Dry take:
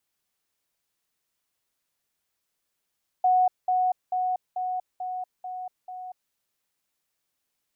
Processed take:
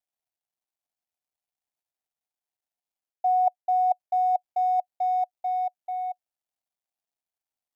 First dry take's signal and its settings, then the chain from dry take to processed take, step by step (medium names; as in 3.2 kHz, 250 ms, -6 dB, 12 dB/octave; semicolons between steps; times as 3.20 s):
level ladder 736 Hz -17 dBFS, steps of -3 dB, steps 7, 0.24 s 0.20 s
companding laws mixed up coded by A; reverse; compression 6:1, threshold -33 dBFS; reverse; FFT filter 500 Hz 0 dB, 730 Hz +12 dB, 1.1 kHz 0 dB